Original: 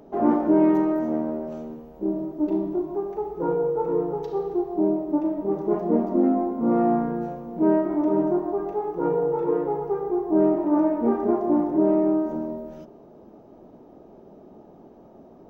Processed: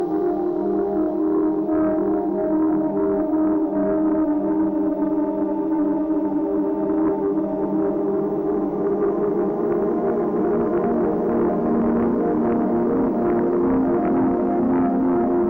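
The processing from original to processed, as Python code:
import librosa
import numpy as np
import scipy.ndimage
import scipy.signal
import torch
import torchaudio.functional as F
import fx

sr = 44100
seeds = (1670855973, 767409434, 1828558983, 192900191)

y = fx.paulstretch(x, sr, seeds[0], factor=9.2, window_s=1.0, from_s=4.59)
y = fx.cheby_harmonics(y, sr, harmonics=(5,), levels_db=(-11,), full_scale_db=-9.0)
y = F.gain(torch.from_numpy(y), -2.5).numpy()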